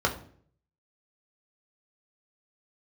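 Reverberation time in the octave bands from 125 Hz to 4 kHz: 0.80, 0.65, 0.60, 0.45, 0.45, 0.40 s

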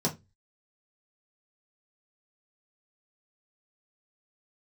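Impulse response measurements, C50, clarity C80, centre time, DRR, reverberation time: 16.0 dB, 25.0 dB, 13 ms, -3.5 dB, 0.20 s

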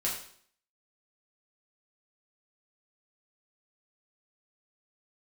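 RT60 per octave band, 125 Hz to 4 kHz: 0.60, 0.60, 0.60, 0.55, 0.55, 0.55 s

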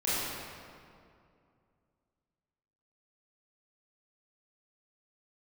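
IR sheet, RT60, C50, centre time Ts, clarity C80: 2.4 s, -5.0 dB, 0.161 s, -2.0 dB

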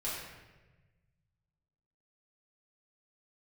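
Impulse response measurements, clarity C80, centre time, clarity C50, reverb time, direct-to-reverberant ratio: 2.5 dB, 79 ms, 0.0 dB, 1.2 s, -8.5 dB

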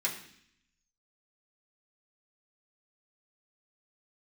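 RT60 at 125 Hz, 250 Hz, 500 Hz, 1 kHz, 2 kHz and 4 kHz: 0.95, 0.95, 0.65, 0.65, 0.80, 0.80 s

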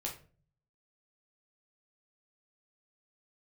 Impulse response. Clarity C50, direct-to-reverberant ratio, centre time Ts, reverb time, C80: 9.0 dB, -1.5 dB, 21 ms, 0.40 s, 14.5 dB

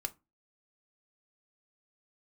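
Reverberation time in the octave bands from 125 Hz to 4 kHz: 0.35, 0.35, 0.25, 0.25, 0.20, 0.15 s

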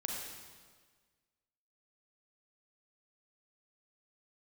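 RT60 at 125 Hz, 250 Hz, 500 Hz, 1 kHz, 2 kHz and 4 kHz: 1.7, 1.6, 1.6, 1.5, 1.4, 1.4 s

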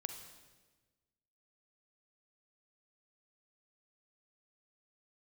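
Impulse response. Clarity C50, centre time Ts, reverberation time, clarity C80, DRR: 7.5 dB, 24 ms, 1.3 s, 9.0 dB, 6.5 dB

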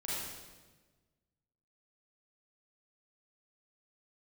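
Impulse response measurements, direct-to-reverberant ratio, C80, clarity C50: -8.5 dB, -0.5 dB, -4.0 dB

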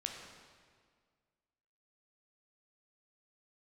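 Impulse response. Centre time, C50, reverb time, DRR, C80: 60 ms, 3.0 dB, 1.9 s, 1.5 dB, 4.5 dB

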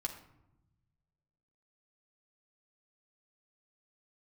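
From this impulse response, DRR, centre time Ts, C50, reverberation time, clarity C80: 0.5 dB, 15 ms, 9.0 dB, 0.90 s, 12.0 dB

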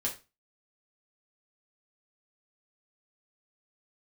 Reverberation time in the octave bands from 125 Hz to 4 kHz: 0.35, 0.30, 0.30, 0.25, 0.25, 0.25 s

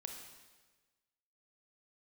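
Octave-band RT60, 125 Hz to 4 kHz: 1.4, 1.3, 1.4, 1.3, 1.3, 1.2 s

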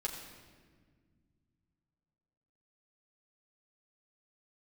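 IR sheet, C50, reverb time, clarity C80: 6.0 dB, 1.7 s, 6.5 dB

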